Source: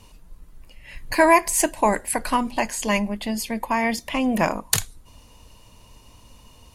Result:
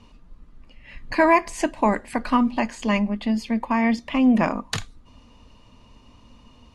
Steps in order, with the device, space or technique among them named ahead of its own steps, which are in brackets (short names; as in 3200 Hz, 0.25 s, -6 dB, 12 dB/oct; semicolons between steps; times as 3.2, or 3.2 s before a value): inside a cardboard box (LPF 4200 Hz 12 dB/oct; small resonant body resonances 240/1200 Hz, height 9 dB); gain -2 dB